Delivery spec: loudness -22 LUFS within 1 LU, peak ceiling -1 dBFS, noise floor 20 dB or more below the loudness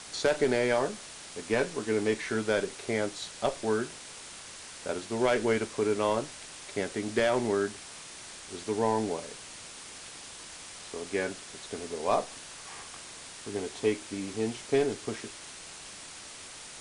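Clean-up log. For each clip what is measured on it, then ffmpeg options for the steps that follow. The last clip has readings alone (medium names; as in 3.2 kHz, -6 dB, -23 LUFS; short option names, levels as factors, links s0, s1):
noise floor -46 dBFS; noise floor target -51 dBFS; loudness -31.0 LUFS; peak level -14.0 dBFS; loudness target -22.0 LUFS
-> -af "afftdn=nr=6:nf=-46"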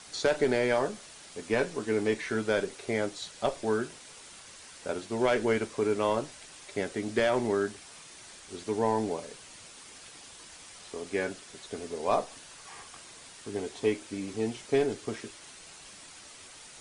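noise floor -50 dBFS; noise floor target -51 dBFS
-> -af "afftdn=nr=6:nf=-50"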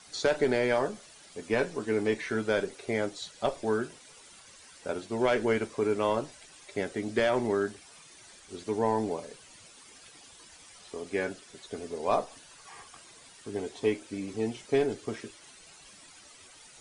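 noise floor -54 dBFS; loudness -30.5 LUFS; peak level -14.0 dBFS; loudness target -22.0 LUFS
-> -af "volume=2.66"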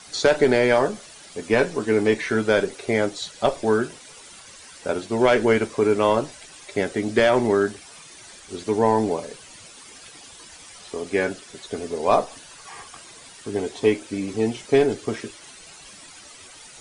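loudness -22.0 LUFS; peak level -5.5 dBFS; noise floor -45 dBFS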